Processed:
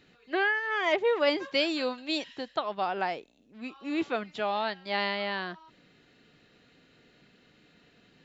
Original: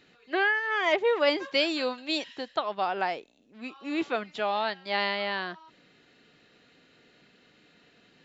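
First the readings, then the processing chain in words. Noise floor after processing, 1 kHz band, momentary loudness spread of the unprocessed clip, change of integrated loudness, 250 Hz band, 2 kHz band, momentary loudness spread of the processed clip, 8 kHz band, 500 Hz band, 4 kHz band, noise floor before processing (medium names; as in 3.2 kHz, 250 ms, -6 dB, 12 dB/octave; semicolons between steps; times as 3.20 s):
-63 dBFS, -1.5 dB, 12 LU, -1.5 dB, 0.0 dB, -2.0 dB, 12 LU, no reading, -1.0 dB, -2.0 dB, -62 dBFS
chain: bass shelf 170 Hz +8.5 dB; trim -2 dB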